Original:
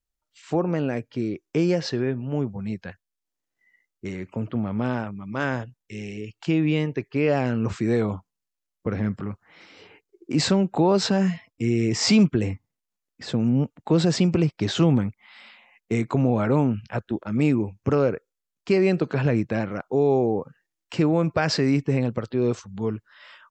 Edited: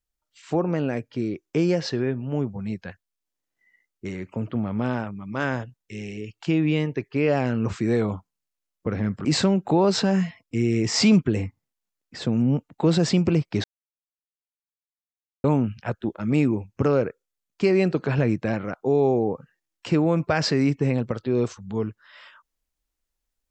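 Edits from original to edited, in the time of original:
9.25–10.32 s: delete
14.71–16.51 s: mute

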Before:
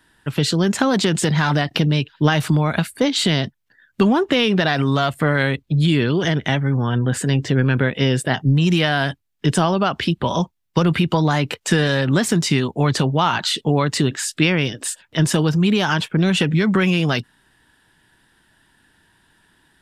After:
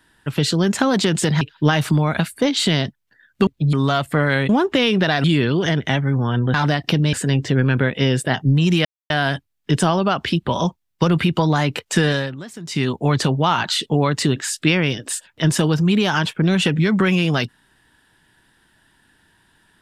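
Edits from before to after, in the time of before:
1.41–2.00 s: move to 7.13 s
4.06–4.81 s: swap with 5.57–5.83 s
8.85 s: insert silence 0.25 s
11.86–12.63 s: dip -17 dB, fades 0.25 s

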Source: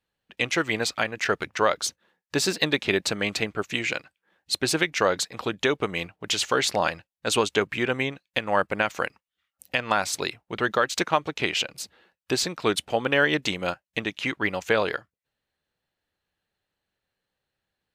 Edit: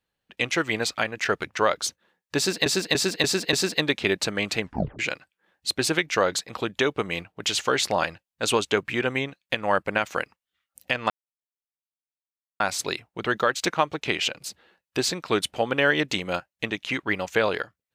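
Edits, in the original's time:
2.37–2.66 s: loop, 5 plays
3.45 s: tape stop 0.38 s
9.94 s: insert silence 1.50 s

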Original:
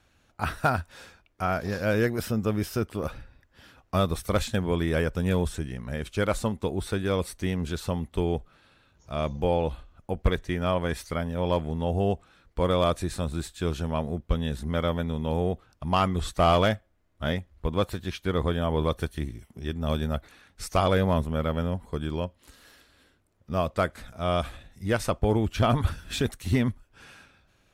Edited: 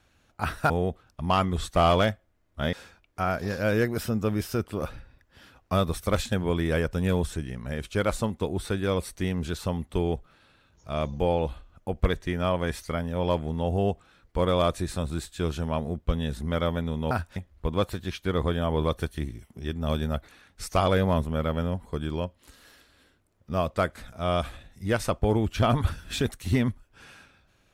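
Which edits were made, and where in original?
0.70–0.95 s: swap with 15.33–17.36 s

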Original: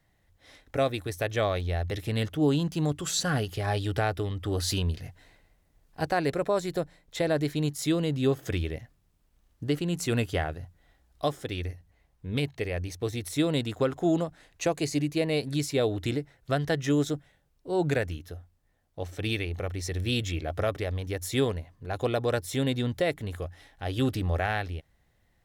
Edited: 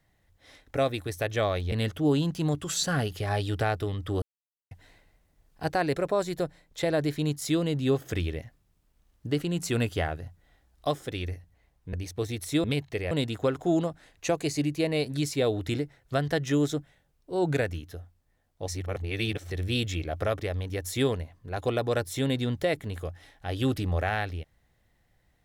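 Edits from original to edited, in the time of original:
1.72–2.09 s: delete
4.59–5.08 s: mute
12.30–12.77 s: move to 13.48 s
19.05–19.88 s: reverse

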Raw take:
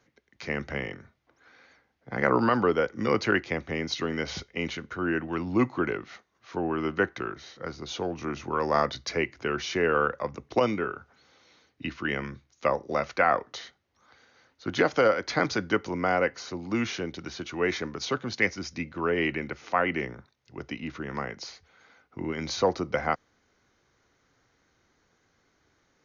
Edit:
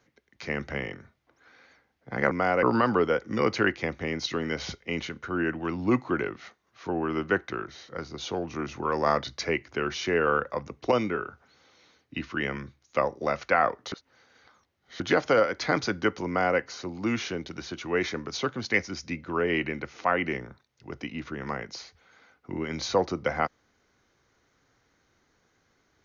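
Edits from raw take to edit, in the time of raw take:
13.60–14.68 s: reverse
15.95–16.27 s: copy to 2.31 s

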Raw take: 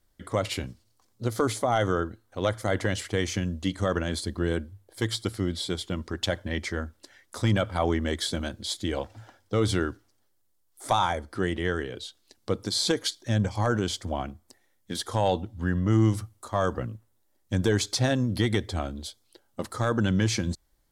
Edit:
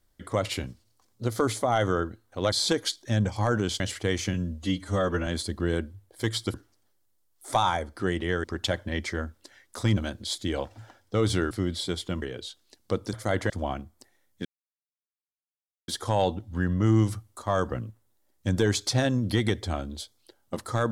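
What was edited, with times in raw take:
2.52–2.89 s: swap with 12.71–13.99 s
3.43–4.05 s: stretch 1.5×
5.32–6.03 s: swap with 9.90–11.80 s
7.56–8.36 s: delete
14.94 s: insert silence 1.43 s

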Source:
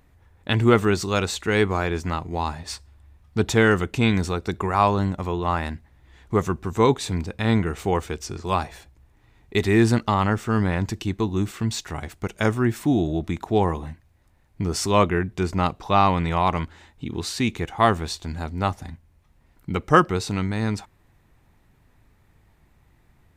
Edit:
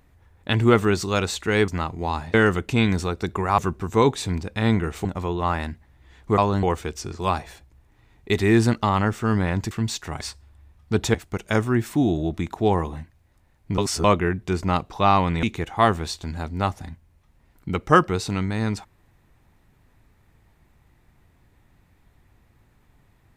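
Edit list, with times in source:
1.68–2.00 s: delete
2.66–3.59 s: move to 12.04 s
4.83–5.08 s: swap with 6.41–7.88 s
10.96–11.54 s: delete
14.68–14.94 s: reverse
16.33–17.44 s: delete

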